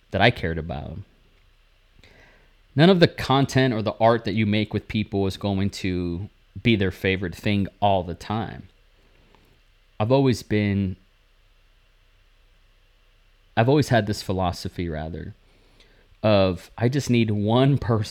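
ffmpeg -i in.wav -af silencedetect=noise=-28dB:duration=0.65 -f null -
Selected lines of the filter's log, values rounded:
silence_start: 0.98
silence_end: 2.77 | silence_duration: 1.79
silence_start: 8.60
silence_end: 10.00 | silence_duration: 1.40
silence_start: 10.93
silence_end: 13.57 | silence_duration: 2.64
silence_start: 15.29
silence_end: 16.24 | silence_duration: 0.95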